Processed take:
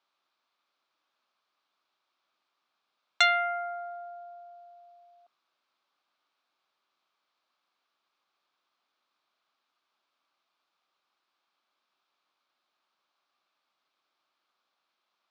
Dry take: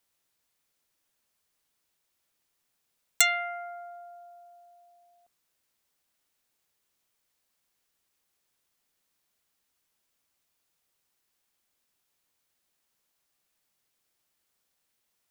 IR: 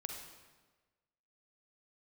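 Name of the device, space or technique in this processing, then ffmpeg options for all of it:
phone earpiece: -af "highpass=380,equalizer=f=460:t=q:w=4:g=-8,equalizer=f=1.2k:t=q:w=4:g=7,equalizer=f=1.9k:t=q:w=4:g=-8,equalizer=f=2.9k:t=q:w=4:g=-4,lowpass=f=4.1k:w=0.5412,lowpass=f=4.1k:w=1.3066,volume=5dB"

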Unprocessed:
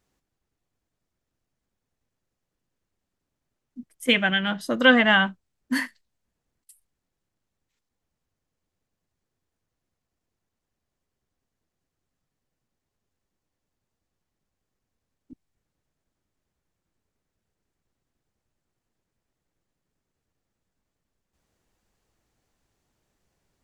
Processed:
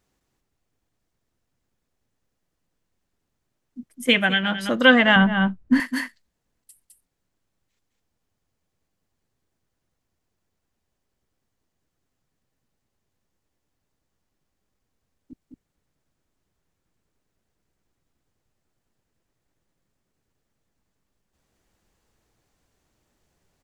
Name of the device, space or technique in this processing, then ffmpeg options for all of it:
ducked delay: -filter_complex "[0:a]asplit=3[a][b][c];[b]adelay=209,volume=-3dB[d];[c]apad=whole_len=1051650[e];[d][e]sidechaincompress=threshold=-36dB:ratio=8:attack=16:release=141[f];[a][f]amix=inputs=2:normalize=0,asettb=1/sr,asplit=3[g][h][i];[g]atrim=end=5.164[j];[h]atrim=start=5.16:end=5.8,asetpts=PTS-STARTPTS,afade=t=in:d=0.004:c=qsin,afade=t=out:st=0.636:d=0.004:c=qsin,aemphasis=mode=reproduction:type=riaa[k];[i]atrim=start=5.796[l];[j][k]acrossfade=d=0.004:c1=hsin:c2=qsin[m];[m][l]acrossfade=d=0.004:c1=qsin:c2=hsin,volume=2dB"

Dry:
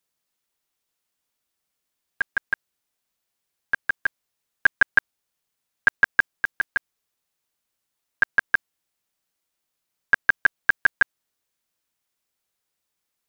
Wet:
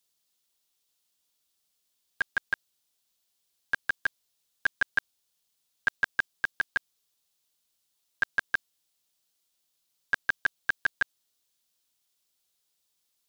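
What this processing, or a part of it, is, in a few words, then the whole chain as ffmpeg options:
over-bright horn tweeter: -af "highshelf=f=2.7k:t=q:w=1.5:g=6.5,alimiter=limit=-12.5dB:level=0:latency=1:release=33,volume=-2.5dB"

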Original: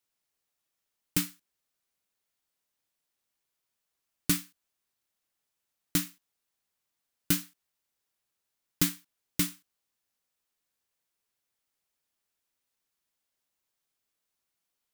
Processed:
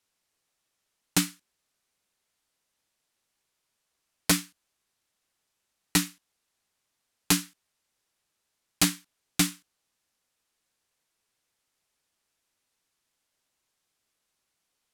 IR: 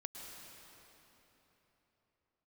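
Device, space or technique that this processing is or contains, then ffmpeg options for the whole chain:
overflowing digital effects unit: -af "aeval=exprs='(mod(5.96*val(0)+1,2)-1)/5.96':c=same,lowpass=11k,volume=6.5dB"

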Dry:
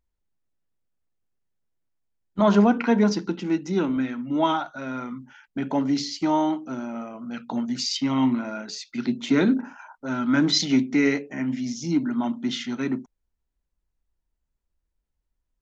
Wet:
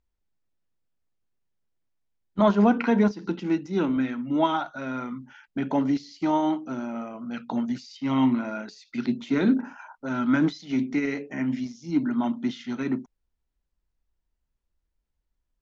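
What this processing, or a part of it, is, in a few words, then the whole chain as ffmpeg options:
de-esser from a sidechain: -filter_complex "[0:a]asplit=2[a][b];[b]highpass=f=6.1k:w=0.5412,highpass=f=6.1k:w=1.3066,apad=whole_len=688422[c];[a][c]sidechaincompress=threshold=-53dB:ratio=4:attack=1.8:release=85,lowpass=6.5k"

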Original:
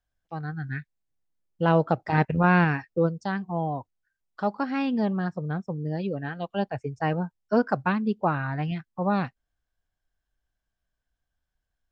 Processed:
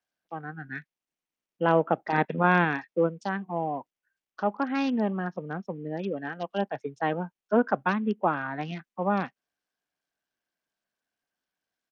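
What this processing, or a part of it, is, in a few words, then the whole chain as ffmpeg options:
Bluetooth headset: -af "highpass=f=200:w=0.5412,highpass=f=200:w=1.3066,aresample=16000,aresample=44100" -ar 48000 -c:a sbc -b:a 64k

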